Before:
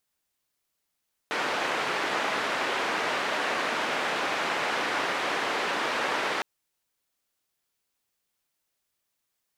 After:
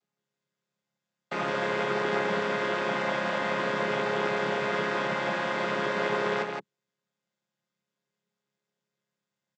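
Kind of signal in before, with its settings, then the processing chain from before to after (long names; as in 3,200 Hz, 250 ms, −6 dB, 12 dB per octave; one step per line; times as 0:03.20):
band-limited noise 320–1,900 Hz, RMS −28.5 dBFS 5.11 s
channel vocoder with a chord as carrier major triad, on C#3
on a send: single-tap delay 168 ms −5 dB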